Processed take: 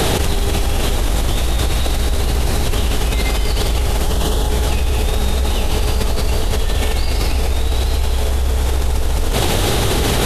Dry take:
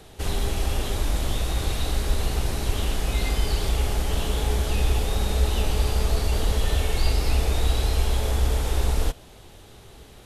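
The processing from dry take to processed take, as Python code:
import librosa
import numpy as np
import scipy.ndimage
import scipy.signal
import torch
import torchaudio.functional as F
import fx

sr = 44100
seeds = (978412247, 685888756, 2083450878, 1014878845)

y = fx.peak_eq(x, sr, hz=2300.0, db=-14.5, octaves=0.3, at=(4.02, 4.5))
y = y + 10.0 ** (-8.5 / 20.0) * np.pad(y, (int(214 * sr / 1000.0), 0))[:len(y)]
y = fx.env_flatten(y, sr, amount_pct=100)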